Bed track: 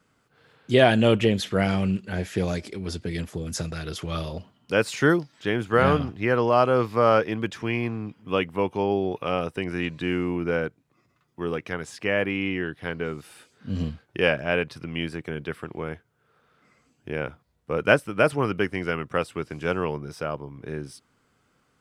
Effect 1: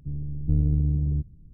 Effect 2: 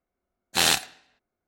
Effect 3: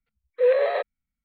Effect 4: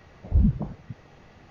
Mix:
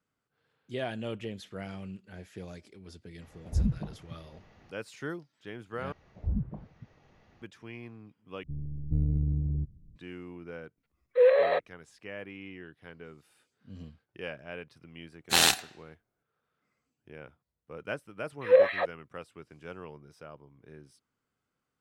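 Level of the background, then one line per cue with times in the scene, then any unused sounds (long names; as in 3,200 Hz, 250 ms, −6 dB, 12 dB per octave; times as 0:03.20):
bed track −17.5 dB
0:03.21: mix in 4 −7 dB
0:05.92: overwrite with 4 −10.5 dB + treble cut that deepens with the level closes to 1,500 Hz, closed at −18.5 dBFS
0:08.43: overwrite with 1 −5.5 dB
0:10.77: mix in 3 −1.5 dB
0:14.76: mix in 2 −1.5 dB
0:18.03: mix in 3 −4 dB + auto-filter high-pass sine 3.2 Hz 430–2,400 Hz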